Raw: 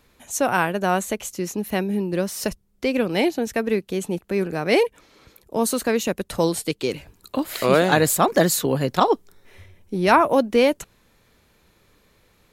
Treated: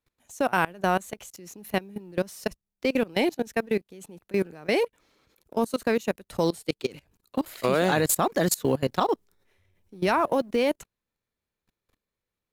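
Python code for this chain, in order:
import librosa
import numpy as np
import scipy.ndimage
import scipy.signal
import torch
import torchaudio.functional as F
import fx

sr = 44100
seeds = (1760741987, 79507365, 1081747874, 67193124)

y = fx.law_mismatch(x, sr, coded='A')
y = fx.level_steps(y, sr, step_db=22)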